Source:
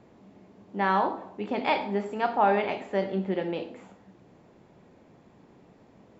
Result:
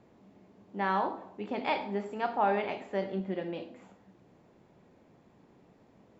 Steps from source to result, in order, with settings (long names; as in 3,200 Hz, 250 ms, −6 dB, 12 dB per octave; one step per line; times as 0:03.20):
0:03.20–0:03.82: notch comb filter 440 Hz
level −5 dB